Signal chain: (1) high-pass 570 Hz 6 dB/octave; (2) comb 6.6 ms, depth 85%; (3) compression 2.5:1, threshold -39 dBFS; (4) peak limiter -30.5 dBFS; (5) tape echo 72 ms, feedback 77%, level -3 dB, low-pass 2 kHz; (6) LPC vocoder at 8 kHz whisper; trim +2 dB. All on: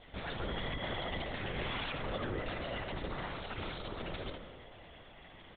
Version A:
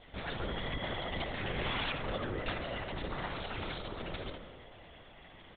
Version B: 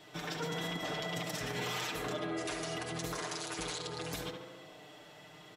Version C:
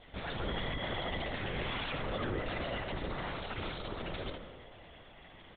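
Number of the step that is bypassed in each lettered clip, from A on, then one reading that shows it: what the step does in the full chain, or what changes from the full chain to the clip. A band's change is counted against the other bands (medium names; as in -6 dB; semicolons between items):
4, momentary loudness spread change +3 LU; 6, 125 Hz band -2.0 dB; 3, mean gain reduction 4.0 dB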